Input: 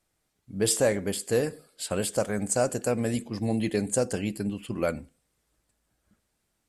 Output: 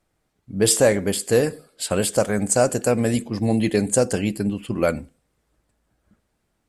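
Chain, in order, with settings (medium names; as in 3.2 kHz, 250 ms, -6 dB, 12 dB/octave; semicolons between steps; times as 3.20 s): tape noise reduction on one side only decoder only; trim +7 dB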